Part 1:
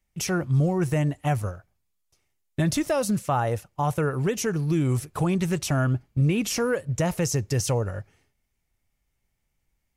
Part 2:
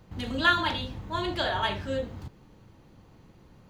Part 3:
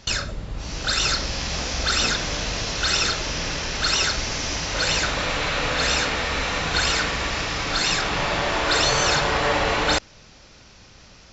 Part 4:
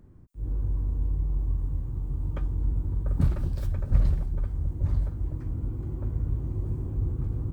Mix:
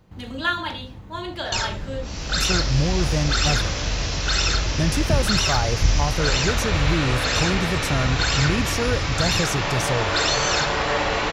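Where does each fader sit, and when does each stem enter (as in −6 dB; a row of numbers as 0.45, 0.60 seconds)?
−0.5, −1.0, −1.0, +2.0 decibels; 2.20, 0.00, 1.45, 1.90 seconds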